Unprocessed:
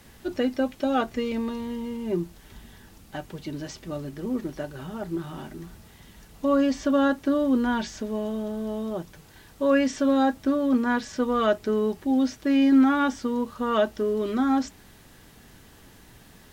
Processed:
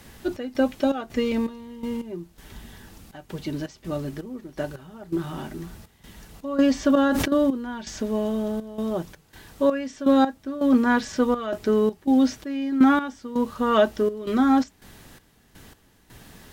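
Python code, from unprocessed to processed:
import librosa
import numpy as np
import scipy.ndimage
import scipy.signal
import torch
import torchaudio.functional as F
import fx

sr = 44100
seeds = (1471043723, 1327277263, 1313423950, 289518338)

y = fx.step_gate(x, sr, bpm=82, pattern='xx.xx.xx..x..xx', floor_db=-12.0, edge_ms=4.5)
y = fx.sustainer(y, sr, db_per_s=24.0, at=(6.87, 7.28))
y = y * librosa.db_to_amplitude(4.0)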